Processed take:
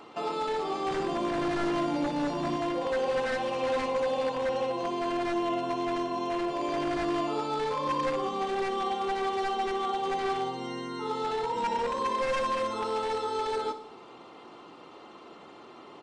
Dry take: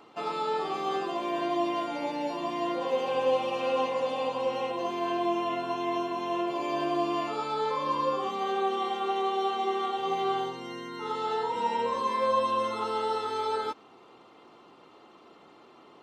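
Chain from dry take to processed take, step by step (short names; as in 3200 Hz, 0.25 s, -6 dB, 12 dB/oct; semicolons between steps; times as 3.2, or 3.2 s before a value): dynamic EQ 2000 Hz, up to -6 dB, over -46 dBFS, Q 0.88; in parallel at -2 dB: compressor, threshold -42 dBFS, peak gain reduction 18 dB; 0.91–2.57 on the sum: tone controls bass +12 dB, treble +2 dB; wavefolder -24 dBFS; downsampling 22050 Hz; on a send: feedback echo 61 ms, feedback 59%, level -12 dB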